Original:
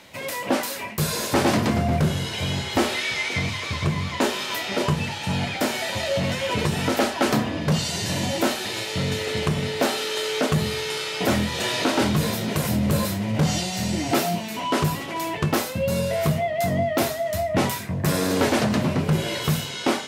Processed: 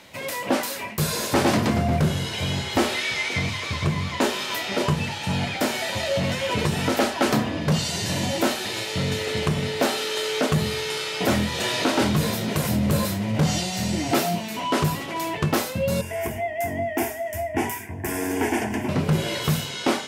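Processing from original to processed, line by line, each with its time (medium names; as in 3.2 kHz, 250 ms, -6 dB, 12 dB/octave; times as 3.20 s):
16.01–18.89 s: static phaser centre 820 Hz, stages 8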